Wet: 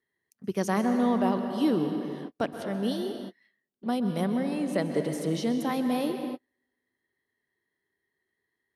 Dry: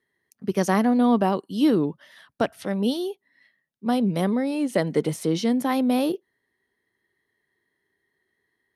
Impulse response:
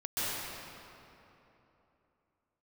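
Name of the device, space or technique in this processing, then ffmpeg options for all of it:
keyed gated reverb: -filter_complex "[0:a]asplit=3[a][b][c];[1:a]atrim=start_sample=2205[d];[b][d]afir=irnorm=-1:irlink=0[e];[c]apad=whole_len=386256[f];[e][f]sidechaingate=range=-47dB:threshold=-52dB:ratio=16:detection=peak,volume=-12dB[g];[a][g]amix=inputs=2:normalize=0,volume=-7dB"

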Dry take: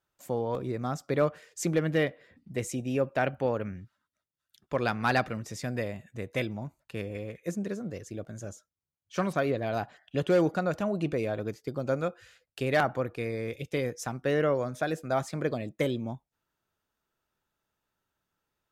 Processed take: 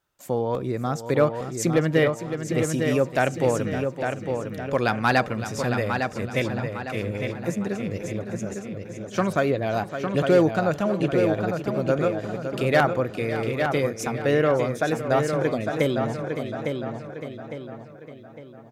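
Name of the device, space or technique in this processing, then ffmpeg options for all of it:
ducked delay: -filter_complex "[0:a]asplit=2[a][b];[b]adelay=856,lowpass=f=4.6k:p=1,volume=-5.5dB,asplit=2[c][d];[d]adelay=856,lowpass=f=4.6k:p=1,volume=0.42,asplit=2[e][f];[f]adelay=856,lowpass=f=4.6k:p=1,volume=0.42,asplit=2[g][h];[h]adelay=856,lowpass=f=4.6k:p=1,volume=0.42,asplit=2[i][j];[j]adelay=856,lowpass=f=4.6k:p=1,volume=0.42[k];[a][c][e][g][i][k]amix=inputs=6:normalize=0,asplit=3[l][m][n];[m]adelay=561,volume=-8.5dB[o];[n]apad=whole_len=1039006[p];[o][p]sidechaincompress=threshold=-33dB:ratio=8:attack=16:release=274[q];[l][q]amix=inputs=2:normalize=0,asplit=3[r][s][t];[r]afade=t=out:st=2.72:d=0.02[u];[s]adynamicequalizer=threshold=0.00282:dfrequency=4300:dqfactor=0.7:tfrequency=4300:tqfactor=0.7:attack=5:release=100:ratio=0.375:range=4:mode=boostabove:tftype=highshelf,afade=t=in:st=2.72:d=0.02,afade=t=out:st=4.8:d=0.02[v];[t]afade=t=in:st=4.8:d=0.02[w];[u][v][w]amix=inputs=3:normalize=0,volume=5.5dB"

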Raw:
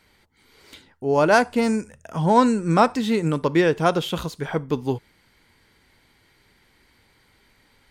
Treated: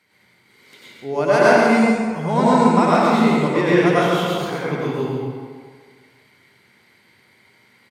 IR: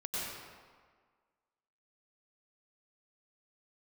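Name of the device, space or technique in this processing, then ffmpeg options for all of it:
PA in a hall: -filter_complex "[0:a]highpass=f=110:w=0.5412,highpass=f=110:w=1.3066,equalizer=f=2.1k:t=o:w=0.29:g=6.5,aecho=1:1:136:0.531[a];[1:a]atrim=start_sample=2205[b];[a][b]afir=irnorm=-1:irlink=0,volume=-1dB"

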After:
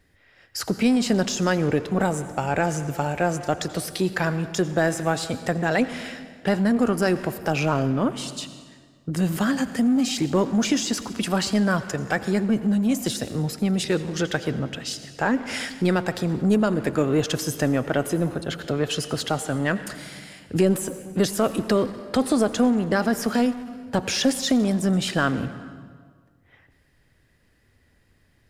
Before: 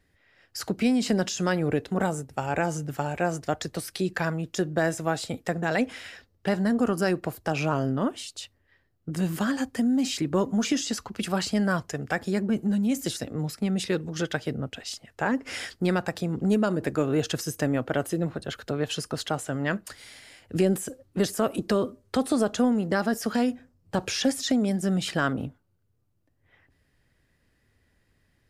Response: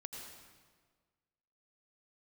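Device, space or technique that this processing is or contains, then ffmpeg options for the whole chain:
saturated reverb return: -filter_complex "[0:a]asplit=2[a][b];[1:a]atrim=start_sample=2205[c];[b][c]afir=irnorm=-1:irlink=0,asoftclip=type=tanh:threshold=-31.5dB,volume=-1.5dB[d];[a][d]amix=inputs=2:normalize=0,volume=2dB"

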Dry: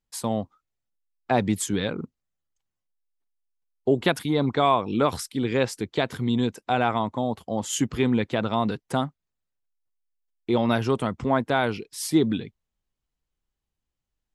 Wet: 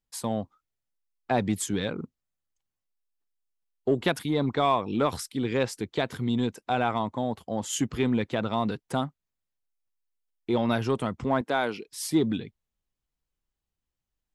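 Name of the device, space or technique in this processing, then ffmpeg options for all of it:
parallel distortion: -filter_complex "[0:a]asettb=1/sr,asplit=3[a][b][c];[a]atrim=end=11.414[d];[b]atrim=start=11.41:end=11.88,asetpts=PTS-STARTPTS,afade=t=in:d=0.004:c=qsin,afade=t=out:st=0.466:d=0.004:c=qsin,highpass=230[e];[c]atrim=start=11.876[f];[d][e]acrossfade=d=0.004:c1=hsin:c2=qsin[g];[g][f]acrossfade=d=0.004:c1=qsin:c2=hsin,asplit=2[h][i];[i]asoftclip=type=hard:threshold=-19.5dB,volume=-12dB[j];[h][j]amix=inputs=2:normalize=0,volume=-4.5dB"

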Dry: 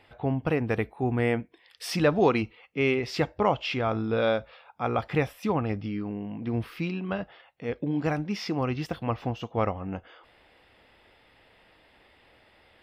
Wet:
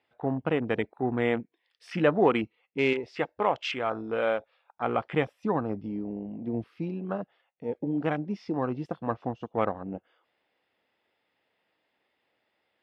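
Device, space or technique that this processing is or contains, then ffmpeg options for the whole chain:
over-cleaned archive recording: -filter_complex "[0:a]highpass=170,lowpass=7.8k,afwtdn=0.0178,asettb=1/sr,asplit=3[a][b][c];[a]atrim=end=2.934[d];[b]atrim=start=2.93:end=4.82,asetpts=PTS-STARTPTS,afade=t=in:d=0.004:c=qsin,afade=t=out:st=1.886:d=0.004:c=qsin,equalizer=f=160:w=0.6:g=-8[e];[c]atrim=start=4.816[f];[d][e]acrossfade=d=0.004:c1=hsin:c2=qsin[g];[g][f]acrossfade=d=0.004:c1=qsin:c2=hsin"

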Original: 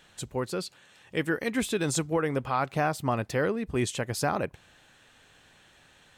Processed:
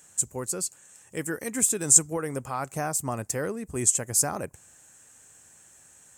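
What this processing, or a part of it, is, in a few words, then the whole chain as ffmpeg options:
budget condenser microphone: -af "highpass=64,equalizer=f=73:w=1.5:g=3.5,highshelf=f=5.3k:t=q:w=3:g=13.5,volume=-3.5dB"

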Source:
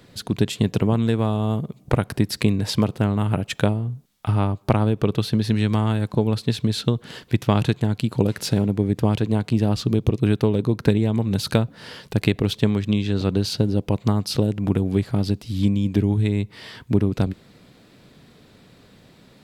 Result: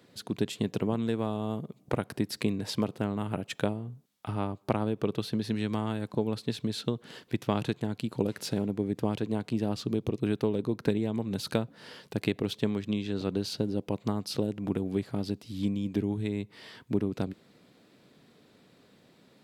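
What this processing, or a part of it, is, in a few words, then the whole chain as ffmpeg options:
filter by subtraction: -filter_complex "[0:a]asplit=2[a][b];[b]lowpass=300,volume=-1[c];[a][c]amix=inputs=2:normalize=0,volume=-9dB"

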